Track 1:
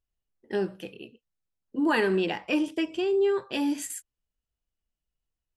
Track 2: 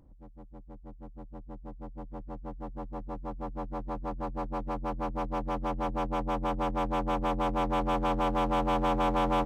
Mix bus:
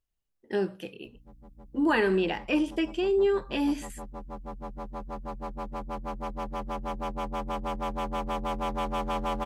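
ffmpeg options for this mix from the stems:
ffmpeg -i stem1.wav -i stem2.wav -filter_complex "[0:a]acrossover=split=3600[link_01][link_02];[link_02]acompressor=threshold=-46dB:ratio=4:attack=1:release=60[link_03];[link_01][link_03]amix=inputs=2:normalize=0,volume=0dB[link_04];[1:a]highshelf=frequency=4000:gain=8,aecho=1:1:5:0.45,aeval=exprs='val(0)+0.00178*(sin(2*PI*60*n/s)+sin(2*PI*2*60*n/s)/2+sin(2*PI*3*60*n/s)/3+sin(2*PI*4*60*n/s)/4+sin(2*PI*5*60*n/s)/5)':channel_layout=same,adelay=1050,volume=-3.5dB[link_05];[link_04][link_05]amix=inputs=2:normalize=0" out.wav

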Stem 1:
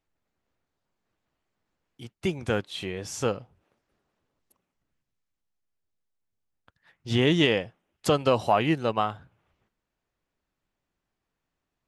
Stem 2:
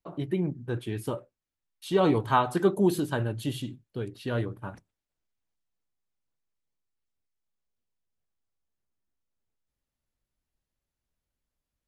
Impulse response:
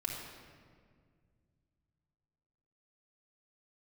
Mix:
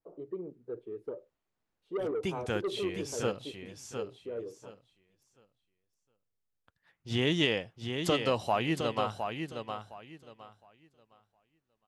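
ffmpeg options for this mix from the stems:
-filter_complex "[0:a]adynamicequalizer=threshold=0.0112:dfrequency=2100:dqfactor=0.7:tfrequency=2100:tqfactor=0.7:attack=5:release=100:ratio=0.375:range=2:mode=boostabove:tftype=highshelf,volume=-7dB,asplit=2[link_01][link_02];[link_02]volume=-6.5dB[link_03];[1:a]bandpass=frequency=450:width_type=q:width=5.6:csg=0,asoftclip=type=tanh:threshold=-29dB,volume=1dB[link_04];[link_03]aecho=0:1:712|1424|2136|2848:1|0.23|0.0529|0.0122[link_05];[link_01][link_04][link_05]amix=inputs=3:normalize=0"

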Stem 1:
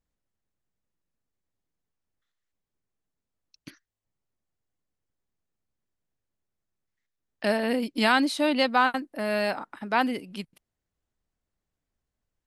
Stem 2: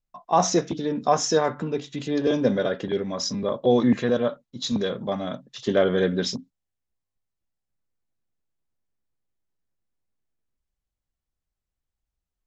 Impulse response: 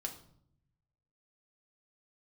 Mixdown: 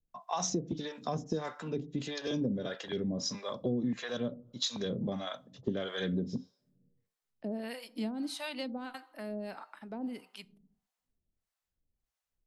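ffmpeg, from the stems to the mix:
-filter_complex "[0:a]volume=-8dB,asplit=2[link_01][link_02];[link_02]volume=-7.5dB[link_03];[1:a]volume=1dB,asplit=2[link_04][link_05];[link_05]volume=-15dB[link_06];[2:a]atrim=start_sample=2205[link_07];[link_03][link_06]amix=inputs=2:normalize=0[link_08];[link_08][link_07]afir=irnorm=-1:irlink=0[link_09];[link_01][link_04][link_09]amix=inputs=3:normalize=0,acrossover=split=300|3000[link_10][link_11][link_12];[link_11]acompressor=threshold=-36dB:ratio=2[link_13];[link_10][link_13][link_12]amix=inputs=3:normalize=0,acrossover=split=610[link_14][link_15];[link_14]aeval=exprs='val(0)*(1-1/2+1/2*cos(2*PI*1.6*n/s))':channel_layout=same[link_16];[link_15]aeval=exprs='val(0)*(1-1/2-1/2*cos(2*PI*1.6*n/s))':channel_layout=same[link_17];[link_16][link_17]amix=inputs=2:normalize=0,acompressor=threshold=-29dB:ratio=6"

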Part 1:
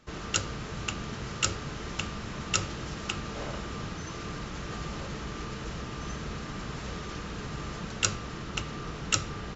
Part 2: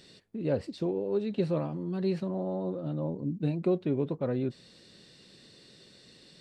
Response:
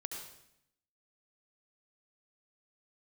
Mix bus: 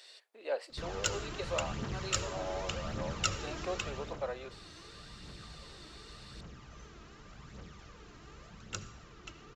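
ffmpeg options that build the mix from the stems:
-filter_complex "[0:a]aphaser=in_gain=1:out_gain=1:delay=3.2:decay=0.5:speed=0.87:type=triangular,adelay=700,volume=-7.5dB,afade=type=out:start_time=3.79:duration=0.42:silence=0.281838,asplit=2[link_01][link_02];[link_02]volume=-8dB[link_03];[1:a]highpass=frequency=620:width=0.5412,highpass=frequency=620:width=1.3066,volume=2dB[link_04];[2:a]atrim=start_sample=2205[link_05];[link_03][link_05]afir=irnorm=-1:irlink=0[link_06];[link_01][link_04][link_06]amix=inputs=3:normalize=0"

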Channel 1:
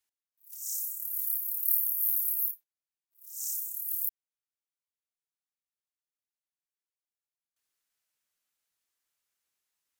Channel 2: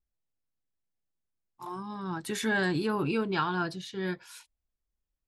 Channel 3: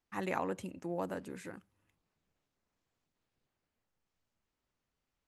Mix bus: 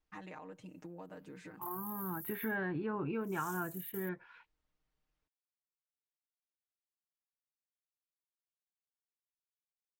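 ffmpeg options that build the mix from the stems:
ffmpeg -i stem1.wav -i stem2.wav -i stem3.wav -filter_complex "[0:a]alimiter=limit=-21.5dB:level=0:latency=1:release=288,volume=-9.5dB[link_01];[1:a]lowpass=frequency=2200:width=0.5412,lowpass=frequency=2200:width=1.3066,volume=-1.5dB,asplit=2[link_02][link_03];[2:a]lowpass=5900,aecho=1:1:6.5:0.87,acompressor=threshold=-41dB:ratio=10,volume=-4.5dB[link_04];[link_03]apad=whole_len=440994[link_05];[link_01][link_05]sidechaingate=range=-42dB:threshold=-50dB:ratio=16:detection=peak[link_06];[link_06][link_02][link_04]amix=inputs=3:normalize=0,acompressor=threshold=-39dB:ratio=2" out.wav

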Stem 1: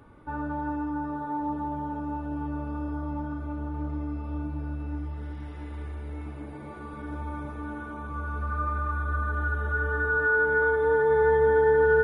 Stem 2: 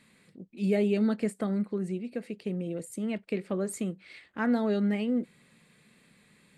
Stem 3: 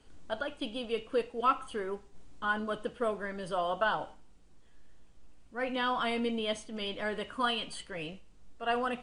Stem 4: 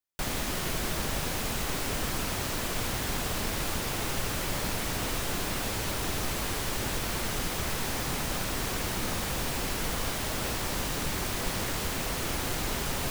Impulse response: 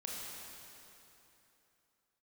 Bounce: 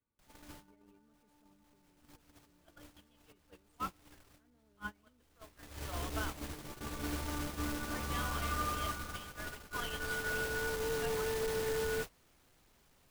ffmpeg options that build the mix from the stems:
-filter_complex "[0:a]acrossover=split=170|3000[link_01][link_02][link_03];[link_01]acompressor=threshold=-38dB:ratio=5[link_04];[link_04][link_02][link_03]amix=inputs=3:normalize=0,afade=type=in:start_time=5.36:duration=0.63:silence=0.266073,afade=type=out:start_time=8.6:duration=0.6:silence=0.298538[link_05];[1:a]flanger=delay=1.9:depth=2:regen=77:speed=0.85:shape=sinusoidal,volume=-8dB,asplit=2[link_06][link_07];[2:a]highpass=810,adelay=2350,volume=-7dB[link_08];[3:a]volume=30dB,asoftclip=hard,volume=-30dB,volume=-1.5dB[link_09];[link_07]apad=whole_len=577719[link_10];[link_09][link_10]sidechaincompress=threshold=-48dB:ratio=6:attack=16:release=1160[link_11];[link_06][link_11]amix=inputs=2:normalize=0,alimiter=level_in=13.5dB:limit=-24dB:level=0:latency=1:release=11,volume=-13.5dB,volume=0dB[link_12];[link_05][link_08]amix=inputs=2:normalize=0,adynamicequalizer=threshold=0.00158:dfrequency=880:dqfactor=5.8:tfrequency=880:tqfactor=5.8:attack=5:release=100:ratio=0.375:range=3:mode=cutabove:tftype=bell,acompressor=threshold=-35dB:ratio=3,volume=0dB[link_13];[link_12][link_13]amix=inputs=2:normalize=0,agate=range=-27dB:threshold=-36dB:ratio=16:detection=peak"

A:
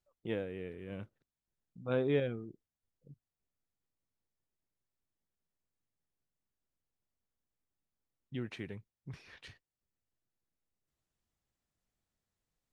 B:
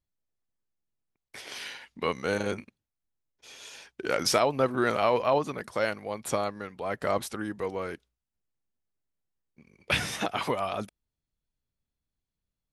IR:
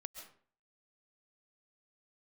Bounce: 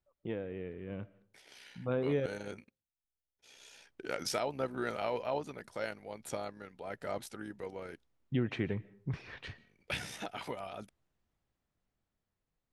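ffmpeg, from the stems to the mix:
-filter_complex "[0:a]aemphasis=mode=reproduction:type=75fm,acompressor=threshold=-36dB:ratio=2.5,volume=-0.5dB,asplit=3[link_01][link_02][link_03];[link_01]atrim=end=2.26,asetpts=PTS-STARTPTS,afade=type=out:start_time=2.256:duration=0.004:curve=hsin[link_04];[link_02]atrim=start=2.26:end=3.56,asetpts=PTS-STARTPTS,volume=0[link_05];[link_03]atrim=start=3.56,asetpts=PTS-STARTPTS,afade=type=in:duration=0.004:curve=hsin[link_06];[link_04][link_05][link_06]concat=n=3:v=0:a=1,asplit=2[link_07][link_08];[link_08]volume=-9dB[link_09];[1:a]tremolo=f=63:d=0.462,bandreject=frequency=1100:width=6.7,volume=-16dB[link_10];[2:a]atrim=start_sample=2205[link_11];[link_09][link_11]afir=irnorm=-1:irlink=0[link_12];[link_07][link_10][link_12]amix=inputs=3:normalize=0,dynaudnorm=framelen=680:gausssize=7:maxgain=8dB"

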